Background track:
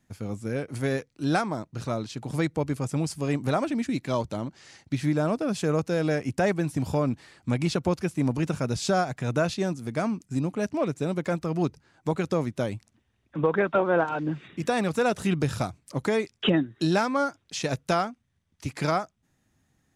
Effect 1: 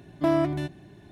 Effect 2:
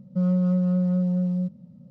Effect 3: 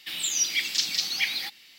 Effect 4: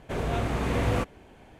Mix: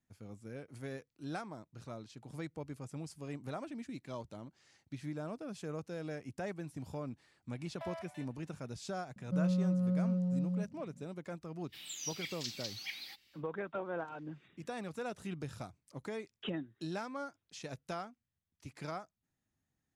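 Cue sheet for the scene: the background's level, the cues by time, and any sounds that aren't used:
background track -16.5 dB
7.57 s: add 1 -13 dB + rippled Chebyshev high-pass 580 Hz, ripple 6 dB
9.16 s: add 2 -9.5 dB
11.66 s: add 3 -16.5 dB, fades 0.10 s
not used: 4

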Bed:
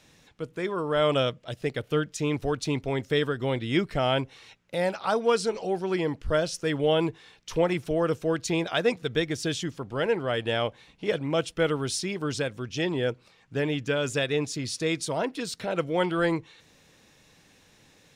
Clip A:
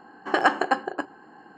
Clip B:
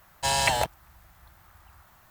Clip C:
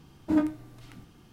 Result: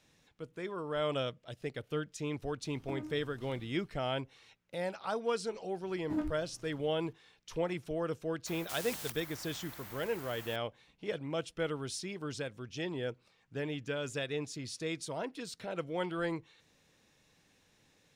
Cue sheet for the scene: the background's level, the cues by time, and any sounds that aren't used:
bed -10 dB
2.60 s: add C -6 dB, fades 0.10 s + compression, threshold -34 dBFS
5.81 s: add C -10.5 dB
8.46 s: add B -11 dB + spectrum-flattening compressor 10:1
not used: A

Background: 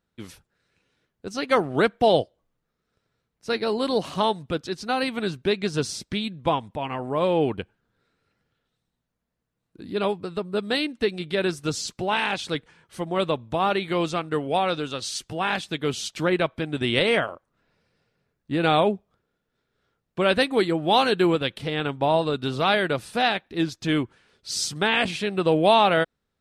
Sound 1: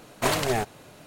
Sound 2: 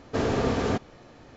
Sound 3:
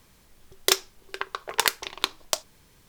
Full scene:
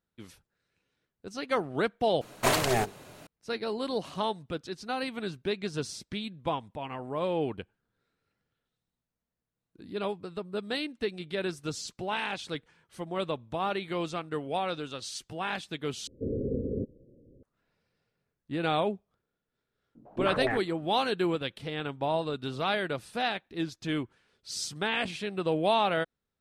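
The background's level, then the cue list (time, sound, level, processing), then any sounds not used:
background -8 dB
2.21 s: replace with 1 -0.5 dB + hum notches 50/100/150/200/250/300/350/400/450/500 Hz
16.07 s: replace with 2 -5.5 dB + steep low-pass 550 Hz 96 dB/octave
19.95 s: add 1 -8.5 dB + step-sequenced low-pass 9.6 Hz 250–1800 Hz
not used: 3

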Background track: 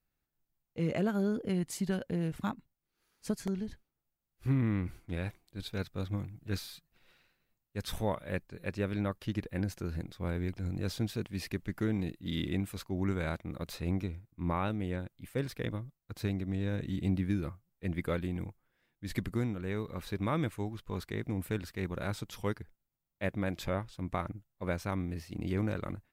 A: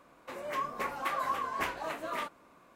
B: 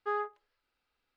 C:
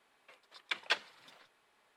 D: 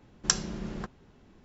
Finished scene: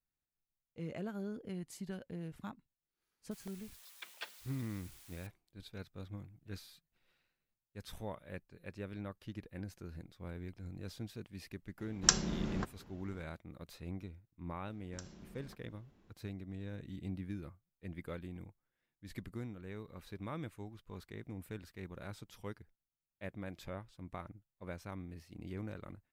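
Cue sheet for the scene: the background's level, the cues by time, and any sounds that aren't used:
background track -11 dB
3.31 s: add C -14 dB + zero-crossing glitches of -35 dBFS
11.79 s: add D -1 dB
14.69 s: add D -10.5 dB + compression 2:1, threshold -47 dBFS
not used: A, B

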